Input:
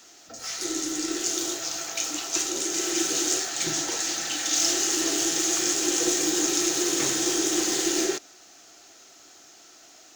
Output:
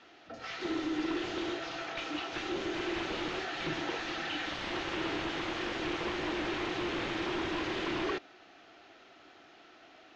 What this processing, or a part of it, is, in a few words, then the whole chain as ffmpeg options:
synthesiser wavefolder: -af "aeval=exprs='0.0562*(abs(mod(val(0)/0.0562+3,4)-2)-1)':c=same,lowpass=f=3.2k:w=0.5412,lowpass=f=3.2k:w=1.3066"

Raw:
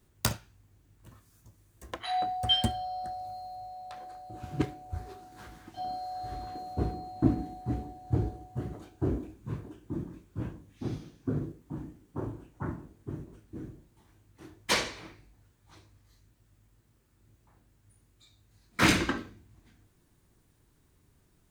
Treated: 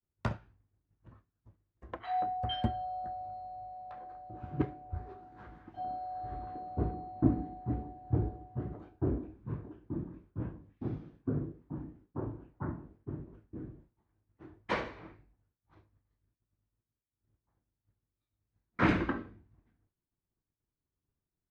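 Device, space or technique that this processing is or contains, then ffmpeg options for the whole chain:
hearing-loss simulation: -af "lowpass=1.6k,agate=range=-33dB:threshold=-52dB:ratio=3:detection=peak,volume=-2dB"

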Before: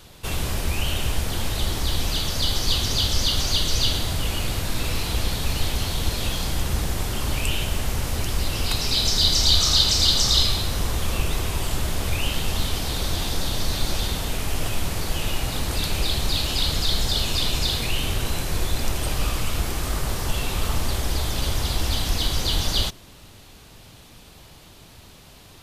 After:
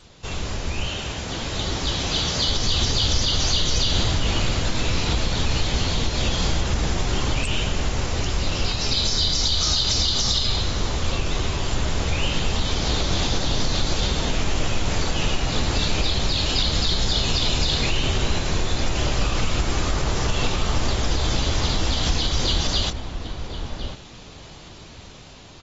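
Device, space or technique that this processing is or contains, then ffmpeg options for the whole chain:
low-bitrate web radio: -filter_complex "[0:a]asettb=1/sr,asplit=3[a][b][c];[a]atrim=end=0.874[d];[b]atrim=start=0.87:end=2.48,asetpts=PTS-STARTPTS,afade=t=in:d=0.004:c=qsin,afade=t=out:st=1.606:d=0.004:c=qsin,highpass=f=120:p=1[e];[c]atrim=start=2.476[f];[d][e]acrossfade=d=0.004:c1=hsin:c2=qsin[g];[g][f]acrossfade=d=0.004:c1=qsin:c2=hsin,highshelf=f=7.8k:g=3,asplit=2[h][i];[i]adelay=1050,volume=-10dB,highshelf=f=4k:g=-23.6[j];[h][j]amix=inputs=2:normalize=0,dynaudnorm=f=400:g=9:m=9dB,alimiter=limit=-8.5dB:level=0:latency=1:release=121,volume=-3dB" -ar 32000 -c:a aac -b:a 24k

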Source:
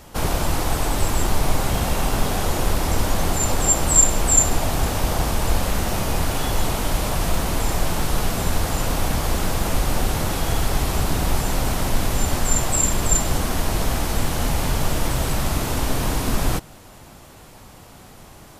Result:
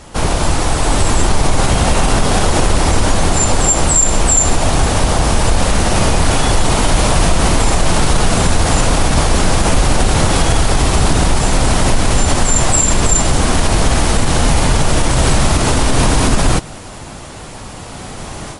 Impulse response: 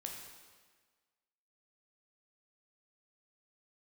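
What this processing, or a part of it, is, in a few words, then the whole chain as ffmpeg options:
low-bitrate web radio: -af "dynaudnorm=f=740:g=3:m=11.5dB,alimiter=limit=-9.5dB:level=0:latency=1:release=67,volume=7.5dB" -ar 32000 -c:a libmp3lame -b:a 48k

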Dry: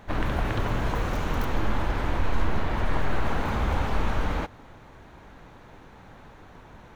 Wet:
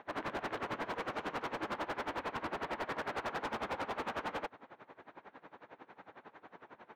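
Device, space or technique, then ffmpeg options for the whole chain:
helicopter radio: -af "highpass=330,lowpass=2.6k,aeval=exprs='val(0)*pow(10,-21*(0.5-0.5*cos(2*PI*11*n/s))/20)':c=same,asoftclip=type=hard:threshold=-35.5dB,volume=2dB"

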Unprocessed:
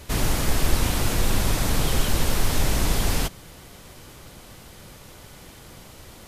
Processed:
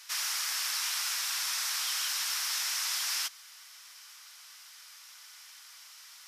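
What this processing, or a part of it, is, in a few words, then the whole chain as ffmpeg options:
headphones lying on a table: -af "highpass=f=1.2k:w=0.5412,highpass=f=1.2k:w=1.3066,equalizer=f=5.4k:t=o:w=0.46:g=9,volume=-4.5dB"

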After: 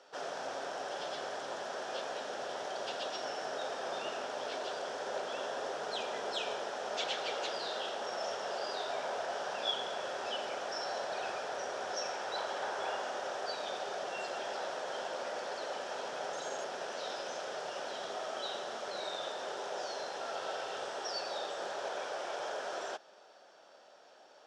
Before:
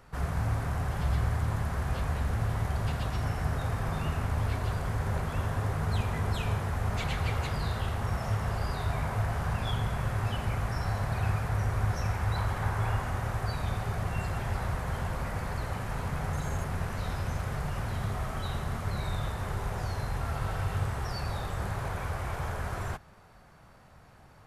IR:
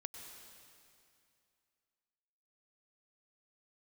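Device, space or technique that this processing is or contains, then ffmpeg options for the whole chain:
phone speaker on a table: -af "highpass=f=360:w=0.5412,highpass=f=360:w=1.3066,equalizer=f=590:t=q:w=4:g=6,equalizer=f=1.1k:t=q:w=4:g=-8,equalizer=f=2.1k:t=q:w=4:g=-9,equalizer=f=3.3k:t=q:w=4:g=7,equalizer=f=5.5k:t=q:w=4:g=8,lowpass=f=7.2k:w=0.5412,lowpass=f=7.2k:w=1.3066"

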